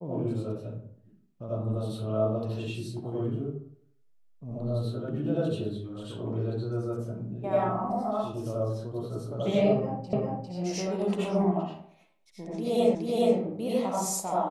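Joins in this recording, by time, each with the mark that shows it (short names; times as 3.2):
10.13 repeat of the last 0.4 s
12.95 repeat of the last 0.42 s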